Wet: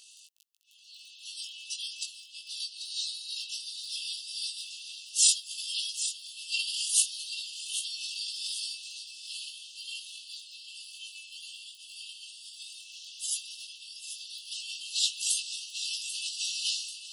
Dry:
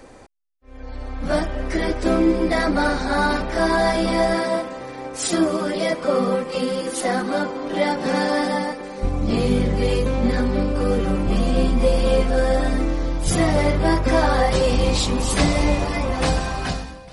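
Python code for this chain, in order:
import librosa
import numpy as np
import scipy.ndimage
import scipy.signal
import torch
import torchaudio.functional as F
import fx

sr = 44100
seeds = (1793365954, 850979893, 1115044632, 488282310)

y = fx.over_compress(x, sr, threshold_db=-24.0, ratio=-1.0)
y = fx.dmg_crackle(y, sr, seeds[0], per_s=11.0, level_db=-39.0)
y = fx.brickwall_highpass(y, sr, low_hz=2600.0)
y = fx.doubler(y, sr, ms=19.0, db=-4)
y = fx.echo_feedback(y, sr, ms=790, feedback_pct=46, wet_db=-11.0)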